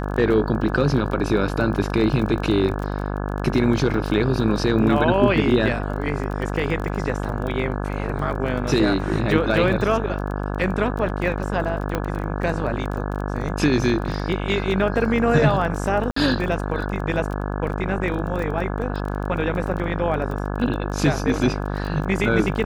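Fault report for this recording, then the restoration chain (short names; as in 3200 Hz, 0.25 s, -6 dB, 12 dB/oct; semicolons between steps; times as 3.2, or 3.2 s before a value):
buzz 50 Hz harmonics 34 -26 dBFS
crackle 20/s -28 dBFS
11.95 pop -10 dBFS
16.11–16.16 gap 54 ms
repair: de-click; de-hum 50 Hz, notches 34; interpolate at 16.11, 54 ms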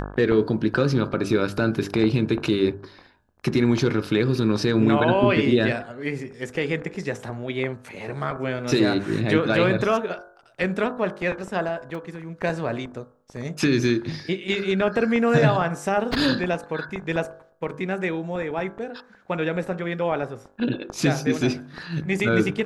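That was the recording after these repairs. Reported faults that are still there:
11.95 pop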